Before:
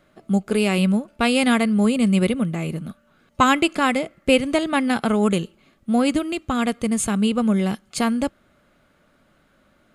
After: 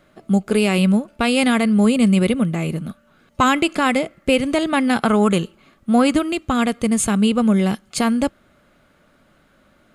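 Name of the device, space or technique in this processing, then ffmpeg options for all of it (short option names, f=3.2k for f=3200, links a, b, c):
clipper into limiter: -filter_complex "[0:a]asoftclip=type=hard:threshold=-6dB,alimiter=limit=-10dB:level=0:latency=1:release=38,asettb=1/sr,asplit=3[a][b][c];[a]atrim=end=5.034[d];[b]atrim=start=5.03:end=6.29,asetpts=PTS-STARTPTS,afade=t=in:d=0.004:c=qsin,afade=t=out:st=1.256:d=0.004:c=qsin,equalizer=f=1.2k:w=1.3:g=4.5[e];[c]atrim=start=6.286[f];[d][e]acrossfade=d=0.004:c1=hsin:c2=qsin[g];[g][f]acrossfade=d=0.004:c1=qsin:c2=hsin,volume=3.5dB"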